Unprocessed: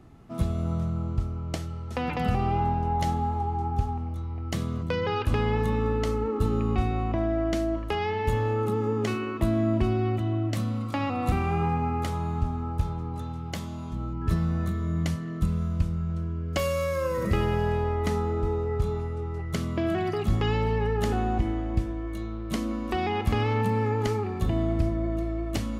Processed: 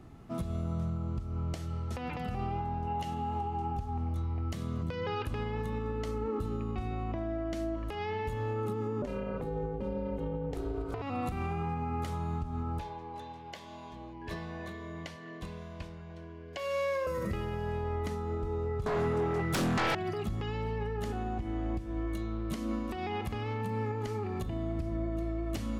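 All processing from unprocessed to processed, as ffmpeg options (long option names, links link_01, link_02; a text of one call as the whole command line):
ffmpeg -i in.wav -filter_complex "[0:a]asettb=1/sr,asplit=3[link_01][link_02][link_03];[link_01]atrim=end=2.874[link_04];[link_02]atrim=start=2.87:end=3.77,asetpts=PTS-STARTPTS,afade=type=in:duration=0.004:curve=qsin,afade=type=out:start_time=0.896:duration=0.004:curve=qsin,highpass=94,equalizer=frequency=2800:width=8:gain=13.5[link_05];[link_03]atrim=start=3.766[link_06];[link_04][link_05]acrossfade=duration=0.004:curve1=hsin:curve2=qsin[link_07];[link_07][link_06]acrossfade=duration=0.004:curve1=qsin:curve2=hsin,asettb=1/sr,asplit=3[link_08][link_09][link_10];[link_08]atrim=end=9.024[link_11];[link_09]atrim=start=9.02:end=11.02,asetpts=PTS-STARTPTS,afade=type=in:duration=0.004:curve=qsin,afade=type=out:start_time=1.996:duration=0.004:curve=qsin,equalizer=frequency=380:width=0.43:gain=12,aeval=exprs='val(0)*sin(2*PI*170*n/s)':channel_layout=same[link_12];[link_10]atrim=start=11.016[link_13];[link_11][link_12]acrossfade=duration=0.004:curve1=hsin:curve2=qsin[link_14];[link_14][link_13]acrossfade=duration=0.004:curve1=qsin:curve2=hsin,asettb=1/sr,asplit=3[link_15][link_16][link_17];[link_15]atrim=end=12.794[link_18];[link_16]atrim=start=12.79:end=17.07,asetpts=PTS-STARTPTS,afade=type=in:duration=0.004:curve=qsin,afade=type=out:start_time=4.276:duration=0.004:curve=qsin,asuperstop=centerf=1300:order=8:qfactor=7.4,acrossover=split=390 5200:gain=0.112 1 0.224[link_19][link_20][link_21];[link_19][link_20][link_21]amix=inputs=3:normalize=0[link_22];[link_17]atrim=start=17.066[link_23];[link_18][link_22]acrossfade=duration=0.004:curve1=hsin:curve2=qsin[link_24];[link_24][link_23]acrossfade=duration=0.004:curve1=qsin:curve2=hsin,asettb=1/sr,asplit=3[link_25][link_26][link_27];[link_25]atrim=end=18.864[link_28];[link_26]atrim=start=18.86:end=19.95,asetpts=PTS-STARTPTS,afade=type=in:duration=0.004:curve=qsin,afade=type=out:start_time=1.086:duration=0.004:curve=qsin,highpass=frequency=120:width=0.5412,highpass=frequency=120:width=1.3066,aeval=exprs='0.188*sin(PI/2*6.31*val(0)/0.188)':channel_layout=same[link_29];[link_27]atrim=start=19.946[link_30];[link_28][link_29]acrossfade=duration=0.004:curve1=hsin:curve2=qsin[link_31];[link_31][link_30]acrossfade=duration=0.004:curve1=qsin:curve2=hsin,acompressor=threshold=-27dB:ratio=6,alimiter=level_in=1.5dB:limit=-24dB:level=0:latency=1:release=211,volume=-1.5dB" out.wav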